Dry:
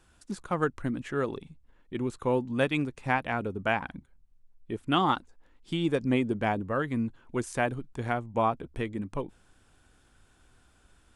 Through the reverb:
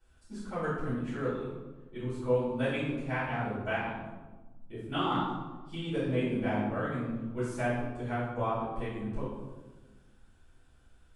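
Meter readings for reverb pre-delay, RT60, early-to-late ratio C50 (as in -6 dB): 3 ms, 1.3 s, 0.5 dB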